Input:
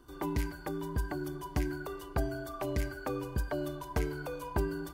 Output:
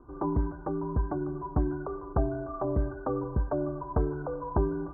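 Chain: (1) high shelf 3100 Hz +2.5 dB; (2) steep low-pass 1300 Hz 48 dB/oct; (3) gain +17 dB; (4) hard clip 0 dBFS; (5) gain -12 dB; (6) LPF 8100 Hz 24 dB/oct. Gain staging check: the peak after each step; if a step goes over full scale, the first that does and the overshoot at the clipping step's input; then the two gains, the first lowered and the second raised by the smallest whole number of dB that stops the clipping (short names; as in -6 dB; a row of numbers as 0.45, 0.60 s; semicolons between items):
-18.5, -19.0, -2.0, -2.0, -14.0, -14.0 dBFS; no overload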